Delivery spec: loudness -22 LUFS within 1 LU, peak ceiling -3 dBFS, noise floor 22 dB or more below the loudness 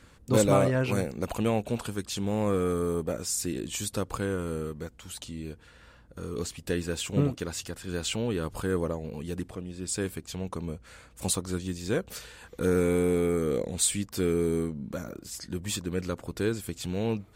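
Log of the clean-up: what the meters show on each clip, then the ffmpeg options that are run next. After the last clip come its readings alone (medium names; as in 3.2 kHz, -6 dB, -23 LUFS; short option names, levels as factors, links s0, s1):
loudness -30.0 LUFS; peak level -9.5 dBFS; loudness target -22.0 LUFS
-> -af "volume=2.51,alimiter=limit=0.708:level=0:latency=1"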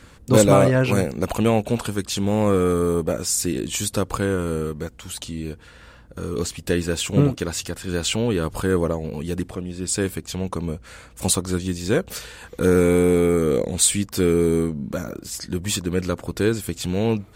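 loudness -22.0 LUFS; peak level -3.0 dBFS; noise floor -47 dBFS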